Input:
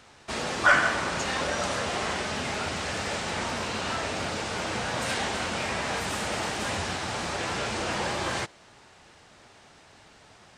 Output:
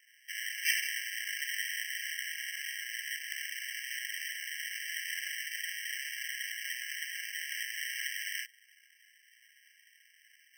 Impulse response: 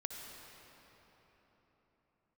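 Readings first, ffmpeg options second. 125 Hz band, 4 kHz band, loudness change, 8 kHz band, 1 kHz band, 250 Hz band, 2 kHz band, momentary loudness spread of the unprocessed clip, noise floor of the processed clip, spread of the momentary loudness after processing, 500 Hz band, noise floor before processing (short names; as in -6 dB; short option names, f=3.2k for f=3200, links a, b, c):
under -40 dB, -5.0 dB, -7.5 dB, -4.5 dB, under -40 dB, under -40 dB, -6.5 dB, 6 LU, -65 dBFS, 4 LU, under -40 dB, -55 dBFS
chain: -af "bandreject=f=800:w=12,acrusher=samples=35:mix=1:aa=0.000001,afftfilt=real='re*eq(mod(floor(b*sr/1024/1600),2),1)':imag='im*eq(mod(floor(b*sr/1024/1600),2),1)':win_size=1024:overlap=0.75,volume=3.5dB"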